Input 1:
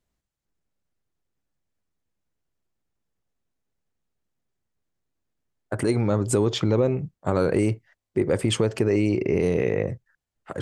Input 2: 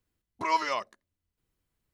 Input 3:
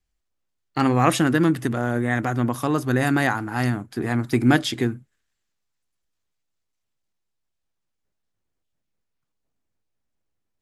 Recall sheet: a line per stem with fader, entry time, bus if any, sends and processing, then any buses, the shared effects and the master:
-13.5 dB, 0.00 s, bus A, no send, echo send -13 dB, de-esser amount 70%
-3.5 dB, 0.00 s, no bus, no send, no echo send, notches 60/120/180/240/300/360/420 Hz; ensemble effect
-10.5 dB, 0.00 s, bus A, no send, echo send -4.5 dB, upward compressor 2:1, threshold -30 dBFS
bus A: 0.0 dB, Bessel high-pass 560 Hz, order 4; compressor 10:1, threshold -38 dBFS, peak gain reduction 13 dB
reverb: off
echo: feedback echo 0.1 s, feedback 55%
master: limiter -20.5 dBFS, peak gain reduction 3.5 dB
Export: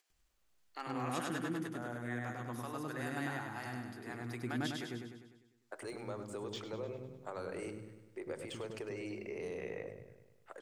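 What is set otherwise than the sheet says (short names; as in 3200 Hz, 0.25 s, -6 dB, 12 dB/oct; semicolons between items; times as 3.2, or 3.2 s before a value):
stem 2: muted; stem 3 -10.5 dB -> -17.0 dB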